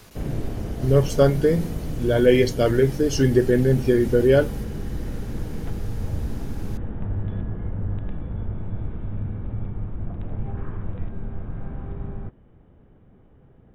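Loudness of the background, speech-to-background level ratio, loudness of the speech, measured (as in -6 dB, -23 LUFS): -32.0 LUFS, 12.0 dB, -20.0 LUFS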